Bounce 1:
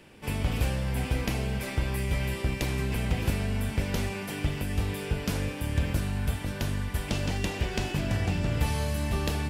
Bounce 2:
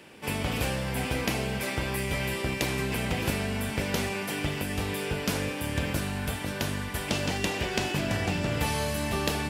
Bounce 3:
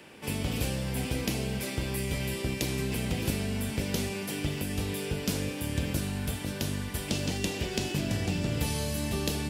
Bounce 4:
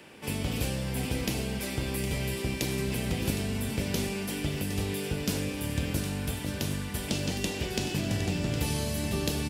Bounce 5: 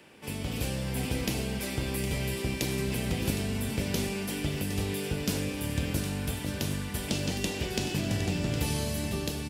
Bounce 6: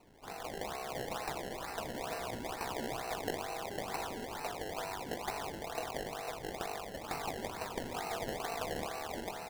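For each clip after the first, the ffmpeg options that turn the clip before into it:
ffmpeg -i in.wav -af "highpass=frequency=240:poles=1,volume=4.5dB" out.wav
ffmpeg -i in.wav -filter_complex "[0:a]acrossover=split=490|3000[link_01][link_02][link_03];[link_02]acompressor=threshold=-51dB:ratio=2[link_04];[link_01][link_04][link_03]amix=inputs=3:normalize=0" out.wav
ffmpeg -i in.wav -af "aecho=1:1:762:0.299" out.wav
ffmpeg -i in.wav -af "dynaudnorm=framelen=130:gausssize=9:maxgain=4dB,volume=-4dB" out.wav
ffmpeg -i in.wav -af "aeval=exprs='val(0)*sin(2*PI*570*n/s)':channel_layout=same,highpass=760,lowpass=3800,acrusher=samples=25:mix=1:aa=0.000001:lfo=1:lforange=25:lforate=2.2,volume=-1dB" out.wav

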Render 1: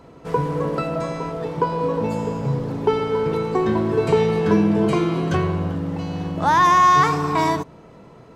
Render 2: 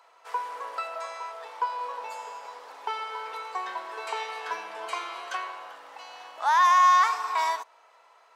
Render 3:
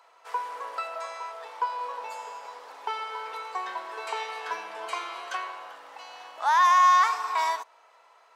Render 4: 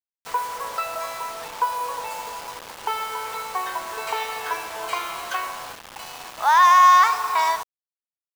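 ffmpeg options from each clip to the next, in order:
ffmpeg -i in.wav -af "highpass=frequency=790:width=0.5412,highpass=frequency=790:width=1.3066,volume=-4dB" out.wav
ffmpeg -i in.wav -af anull out.wav
ffmpeg -i in.wav -af "acrusher=bits=6:mix=0:aa=0.000001,volume=5.5dB" out.wav

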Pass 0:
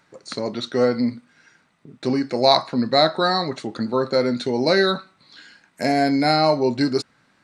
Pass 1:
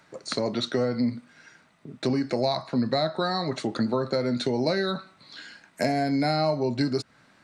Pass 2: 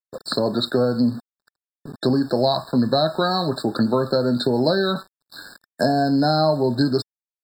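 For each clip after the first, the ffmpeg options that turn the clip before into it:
ffmpeg -i in.wav -filter_complex "[0:a]acrossover=split=150[link_01][link_02];[link_02]acompressor=threshold=-25dB:ratio=12[link_03];[link_01][link_03]amix=inputs=2:normalize=0,equalizer=frequency=640:width=7.6:gain=4.5,volume=2dB" out.wav
ffmpeg -i in.wav -af "aeval=exprs='val(0)*gte(abs(val(0)),0.00668)':channel_layout=same,agate=range=-33dB:threshold=-48dB:ratio=3:detection=peak,afftfilt=real='re*eq(mod(floor(b*sr/1024/1800),2),0)':imag='im*eq(mod(floor(b*sr/1024/1800),2),0)':win_size=1024:overlap=0.75,volume=6dB" out.wav

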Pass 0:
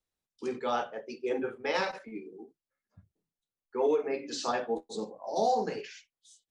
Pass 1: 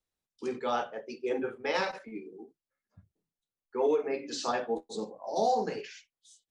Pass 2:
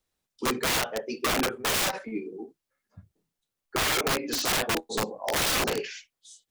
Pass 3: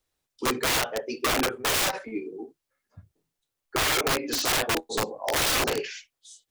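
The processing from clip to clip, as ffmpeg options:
ffmpeg -i in.wav -af anull out.wav
ffmpeg -i in.wav -af "aeval=exprs='(mod(26.6*val(0)+1,2)-1)/26.6':channel_layout=same,volume=8dB" out.wav
ffmpeg -i in.wav -af "equalizer=frequency=200:width_type=o:width=0.25:gain=-10.5,volume=1.5dB" out.wav

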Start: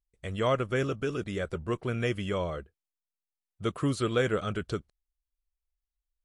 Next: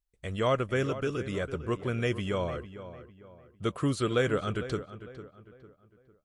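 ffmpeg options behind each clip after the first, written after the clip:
ffmpeg -i in.wav -filter_complex "[0:a]asplit=2[link_01][link_02];[link_02]adelay=452,lowpass=frequency=2500:poles=1,volume=-13dB,asplit=2[link_03][link_04];[link_04]adelay=452,lowpass=frequency=2500:poles=1,volume=0.38,asplit=2[link_05][link_06];[link_06]adelay=452,lowpass=frequency=2500:poles=1,volume=0.38,asplit=2[link_07][link_08];[link_08]adelay=452,lowpass=frequency=2500:poles=1,volume=0.38[link_09];[link_01][link_03][link_05][link_07][link_09]amix=inputs=5:normalize=0" out.wav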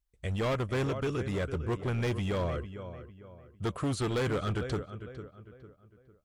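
ffmpeg -i in.wav -af "equalizer=frequency=63:width_type=o:width=1.9:gain=7,asoftclip=type=hard:threshold=-26.5dB" out.wav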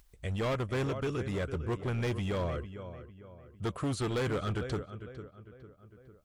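ffmpeg -i in.wav -af "acompressor=mode=upward:threshold=-45dB:ratio=2.5,volume=-1.5dB" out.wav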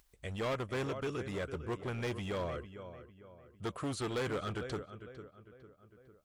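ffmpeg -i in.wav -af "lowshelf=frequency=180:gain=-8,volume=-2dB" out.wav

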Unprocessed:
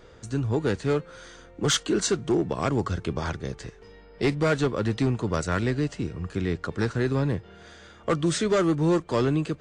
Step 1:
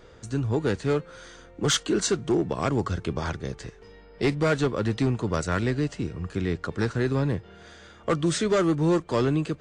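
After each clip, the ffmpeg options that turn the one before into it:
ffmpeg -i in.wav -af anull out.wav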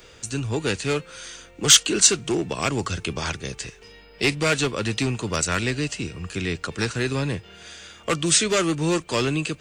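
ffmpeg -i in.wav -filter_complex "[0:a]equalizer=frequency=2600:width_type=o:width=0.41:gain=8.5,acrossover=split=110[link_01][link_02];[link_02]crystalizer=i=5:c=0[link_03];[link_01][link_03]amix=inputs=2:normalize=0,volume=-1dB" out.wav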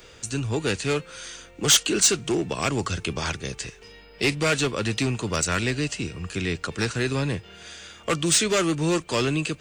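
ffmpeg -i in.wav -af "asoftclip=type=tanh:threshold=-11dB" out.wav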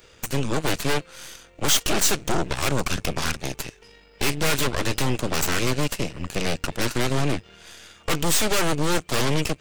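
ffmpeg -i in.wav -af "aeval=exprs='0.282*(cos(1*acos(clip(val(0)/0.282,-1,1)))-cos(1*PI/2))+0.126*(cos(8*acos(clip(val(0)/0.282,-1,1)))-cos(8*PI/2))':channel_layout=same,volume=-4dB" out.wav

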